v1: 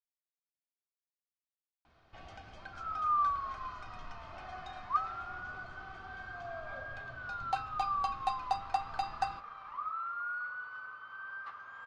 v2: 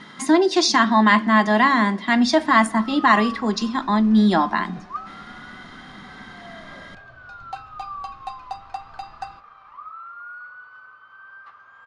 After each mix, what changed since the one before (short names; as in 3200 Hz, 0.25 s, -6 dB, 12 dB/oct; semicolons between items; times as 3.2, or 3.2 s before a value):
speech: unmuted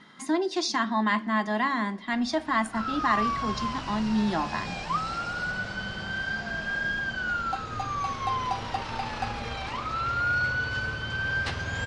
speech -10.0 dB; second sound: remove band-pass 1200 Hz, Q 11